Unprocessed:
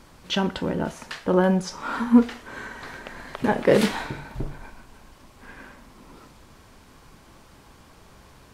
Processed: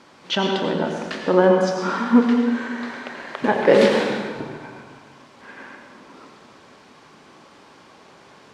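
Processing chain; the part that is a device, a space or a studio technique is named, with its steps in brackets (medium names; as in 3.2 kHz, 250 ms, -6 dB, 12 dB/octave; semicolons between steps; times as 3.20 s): supermarket ceiling speaker (band-pass 230–5600 Hz; reverberation RT60 1.3 s, pre-delay 81 ms, DRR 2.5 dB); trim +3.5 dB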